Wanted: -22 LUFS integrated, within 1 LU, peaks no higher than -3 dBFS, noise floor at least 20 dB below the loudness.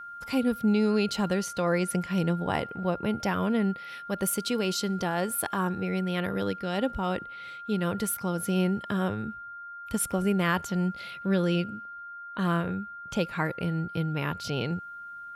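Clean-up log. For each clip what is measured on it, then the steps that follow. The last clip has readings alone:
steady tone 1400 Hz; tone level -39 dBFS; loudness -29.0 LUFS; peak -14.5 dBFS; loudness target -22.0 LUFS
-> notch 1400 Hz, Q 30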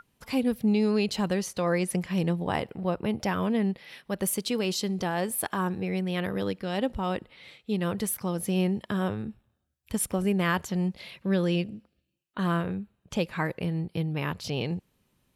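steady tone none; loudness -29.0 LUFS; peak -15.0 dBFS; loudness target -22.0 LUFS
-> gain +7 dB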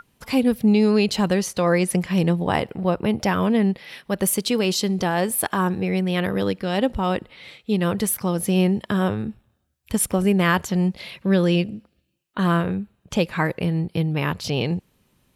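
loudness -22.0 LUFS; peak -7.5 dBFS; noise floor -68 dBFS

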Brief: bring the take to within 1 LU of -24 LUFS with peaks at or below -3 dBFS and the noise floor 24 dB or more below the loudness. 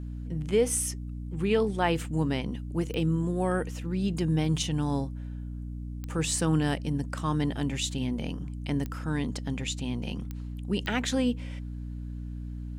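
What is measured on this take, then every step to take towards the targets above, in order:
clicks 5; hum 60 Hz; harmonics up to 300 Hz; hum level -34 dBFS; loudness -30.0 LUFS; peak -13.0 dBFS; loudness target -24.0 LUFS
-> de-click; notches 60/120/180/240/300 Hz; gain +6 dB

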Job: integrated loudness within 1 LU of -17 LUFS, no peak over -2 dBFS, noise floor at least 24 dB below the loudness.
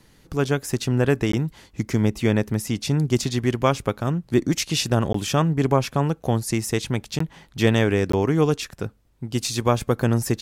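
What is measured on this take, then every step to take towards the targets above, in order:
dropouts 4; longest dropout 14 ms; loudness -23.0 LUFS; peak -5.5 dBFS; loudness target -17.0 LUFS
-> interpolate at 1.32/5.13/7.19/8.12, 14 ms; gain +6 dB; limiter -2 dBFS

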